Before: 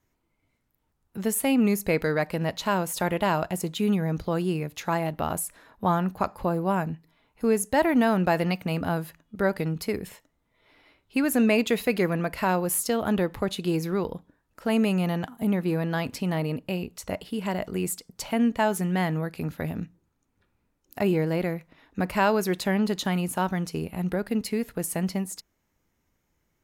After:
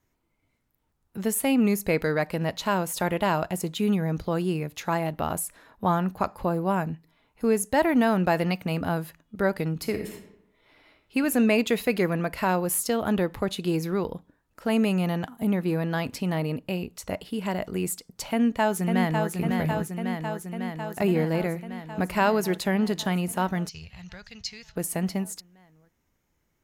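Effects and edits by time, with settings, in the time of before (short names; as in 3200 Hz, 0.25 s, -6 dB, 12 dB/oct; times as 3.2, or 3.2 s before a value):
9.74–11.17 reverb throw, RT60 0.82 s, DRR 6 dB
18.31–19.32 echo throw 0.55 s, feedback 75%, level -4.5 dB
23.69–24.76 EQ curve 110 Hz 0 dB, 270 Hz -29 dB, 1100 Hz -12 dB, 6200 Hz +8 dB, 9500 Hz -24 dB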